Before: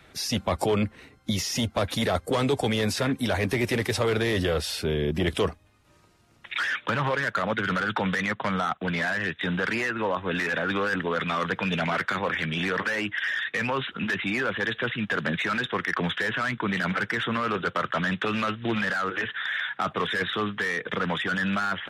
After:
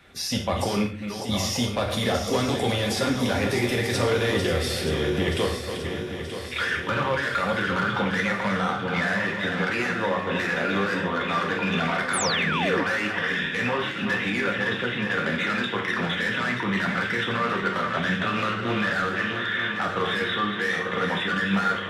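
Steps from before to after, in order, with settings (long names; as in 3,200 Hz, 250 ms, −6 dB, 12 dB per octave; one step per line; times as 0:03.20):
feedback delay that plays each chunk backwards 464 ms, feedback 74%, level −8 dB
reverb whose tail is shaped and stops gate 180 ms falling, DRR 0.5 dB
sound drawn into the spectrogram fall, 0:12.13–0:12.84, 250–11,000 Hz −26 dBFS
level −2 dB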